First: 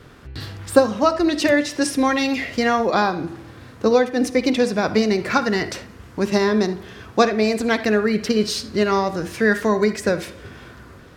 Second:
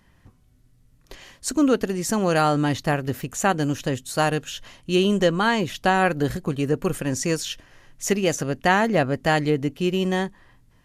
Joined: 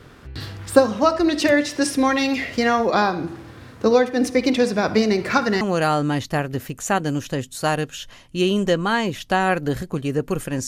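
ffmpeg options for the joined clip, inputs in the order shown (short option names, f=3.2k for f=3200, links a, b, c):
-filter_complex "[0:a]apad=whole_dur=10.67,atrim=end=10.67,atrim=end=5.612[a];[1:a]atrim=start=2.148:end=7.21[b];[a][b]acrossfade=d=0.004:c1=hsin:c2=hsin"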